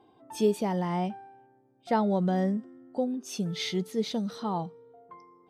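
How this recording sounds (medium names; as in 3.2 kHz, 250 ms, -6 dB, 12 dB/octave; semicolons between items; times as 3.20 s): noise floor -63 dBFS; spectral tilt -5.5 dB/octave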